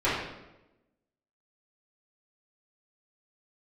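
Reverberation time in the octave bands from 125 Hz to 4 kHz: 1.1, 1.2, 1.1, 0.90, 0.80, 0.70 seconds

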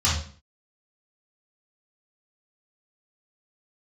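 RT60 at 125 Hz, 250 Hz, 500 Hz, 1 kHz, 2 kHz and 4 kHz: 0.50, 0.55, 0.45, 0.45, 0.40, 0.40 seconds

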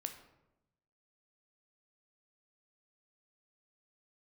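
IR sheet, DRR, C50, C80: 6.0 dB, 9.5 dB, 12.0 dB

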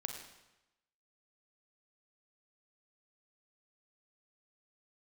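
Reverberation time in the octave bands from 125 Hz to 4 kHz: 1.0, 0.95, 0.95, 0.95, 0.95, 0.90 seconds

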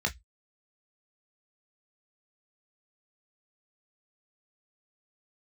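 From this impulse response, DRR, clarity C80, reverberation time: 3.0 dB, 35.0 dB, 0.10 s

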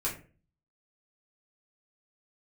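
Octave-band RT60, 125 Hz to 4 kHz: 0.65, 0.55, 0.45, 0.35, 0.35, 0.25 seconds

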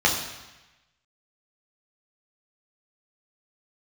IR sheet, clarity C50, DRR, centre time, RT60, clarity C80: 6.0 dB, −2.0 dB, 35 ms, 1.1 s, 8.0 dB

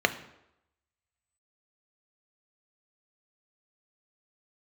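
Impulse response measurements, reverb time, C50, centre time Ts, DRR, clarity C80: 0.85 s, 14.0 dB, 7 ms, 8.5 dB, 16.5 dB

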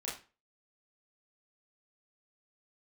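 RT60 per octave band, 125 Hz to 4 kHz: 0.40, 0.35, 0.30, 0.35, 0.35, 0.30 seconds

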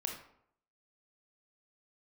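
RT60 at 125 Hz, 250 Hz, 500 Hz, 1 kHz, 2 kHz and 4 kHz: 0.70, 0.70, 0.70, 0.70, 0.55, 0.40 seconds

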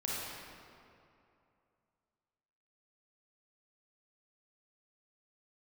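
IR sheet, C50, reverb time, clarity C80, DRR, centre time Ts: −4.0 dB, 2.6 s, −1.5 dB, −6.0 dB, 156 ms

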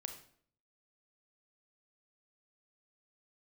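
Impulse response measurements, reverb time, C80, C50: 0.60 s, 12.0 dB, 8.5 dB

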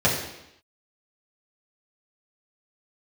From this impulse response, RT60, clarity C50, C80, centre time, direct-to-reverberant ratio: 0.85 s, 4.5 dB, 7.0 dB, 39 ms, −7.0 dB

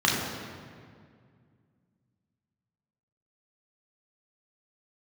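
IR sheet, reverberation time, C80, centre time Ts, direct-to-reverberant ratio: 2.1 s, 3.0 dB, 87 ms, −4.0 dB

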